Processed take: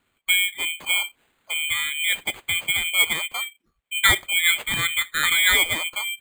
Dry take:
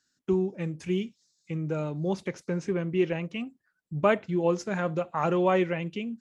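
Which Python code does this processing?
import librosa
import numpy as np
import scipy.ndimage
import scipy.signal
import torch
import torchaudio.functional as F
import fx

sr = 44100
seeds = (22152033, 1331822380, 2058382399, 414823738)

y = fx.band_shuffle(x, sr, order='2413')
y = np.repeat(y[::8], 8)[:len(y)]
y = y * 10.0 ** (5.0 / 20.0)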